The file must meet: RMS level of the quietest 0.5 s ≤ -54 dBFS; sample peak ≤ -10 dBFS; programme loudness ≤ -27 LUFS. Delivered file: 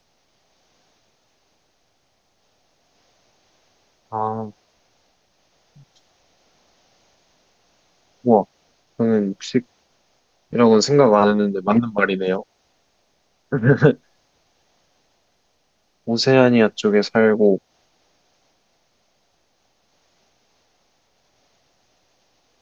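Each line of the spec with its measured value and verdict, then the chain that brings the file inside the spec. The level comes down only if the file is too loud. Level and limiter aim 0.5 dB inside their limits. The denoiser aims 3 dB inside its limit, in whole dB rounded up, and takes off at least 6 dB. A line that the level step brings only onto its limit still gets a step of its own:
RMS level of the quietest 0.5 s -66 dBFS: OK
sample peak -1.5 dBFS: fail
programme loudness -18.0 LUFS: fail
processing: gain -9.5 dB

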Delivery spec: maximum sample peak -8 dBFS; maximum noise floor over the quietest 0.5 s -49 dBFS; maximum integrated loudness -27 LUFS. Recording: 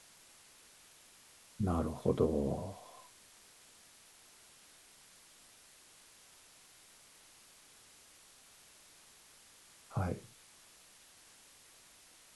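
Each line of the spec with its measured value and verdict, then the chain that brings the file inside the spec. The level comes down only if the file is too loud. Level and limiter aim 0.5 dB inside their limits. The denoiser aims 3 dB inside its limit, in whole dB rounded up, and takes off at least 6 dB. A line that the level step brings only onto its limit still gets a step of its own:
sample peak -16.0 dBFS: OK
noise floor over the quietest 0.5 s -61 dBFS: OK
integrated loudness -36.5 LUFS: OK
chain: none

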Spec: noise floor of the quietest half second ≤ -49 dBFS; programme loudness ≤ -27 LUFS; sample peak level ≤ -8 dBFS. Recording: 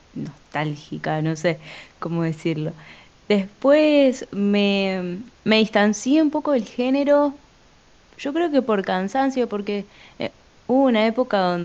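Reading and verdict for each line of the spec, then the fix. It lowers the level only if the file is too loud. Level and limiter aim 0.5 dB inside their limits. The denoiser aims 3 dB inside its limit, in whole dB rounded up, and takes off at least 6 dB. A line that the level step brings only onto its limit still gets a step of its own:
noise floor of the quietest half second -53 dBFS: OK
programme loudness -21.0 LUFS: fail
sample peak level -3.5 dBFS: fail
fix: gain -6.5 dB

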